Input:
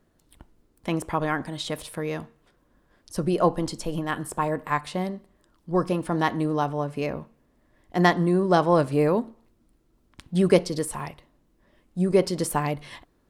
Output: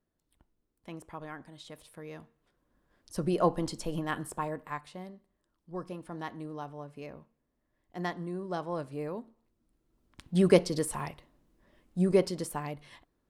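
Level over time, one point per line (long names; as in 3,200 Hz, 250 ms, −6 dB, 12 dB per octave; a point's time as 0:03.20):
0:01.78 −17 dB
0:03.28 −5 dB
0:04.16 −5 dB
0:04.97 −15.5 dB
0:09.24 −15.5 dB
0:10.38 −3 dB
0:12.09 −3 dB
0:12.52 −11 dB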